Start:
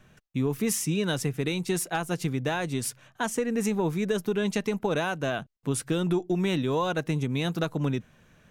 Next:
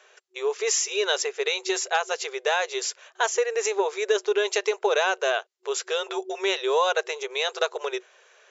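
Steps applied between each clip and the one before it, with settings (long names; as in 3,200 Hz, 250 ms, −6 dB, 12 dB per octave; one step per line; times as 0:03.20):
brick-wall band-pass 370–7,500 Hz
high-shelf EQ 4,000 Hz +6 dB
level +5.5 dB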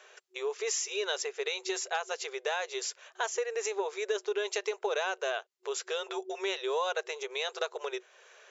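downward compressor 1.5 to 1, threshold −44 dBFS, peak gain reduction 9.5 dB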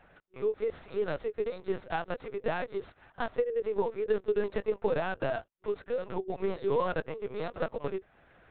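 running median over 15 samples
dynamic equaliser 430 Hz, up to +4 dB, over −42 dBFS, Q 0.88
linear-prediction vocoder at 8 kHz pitch kept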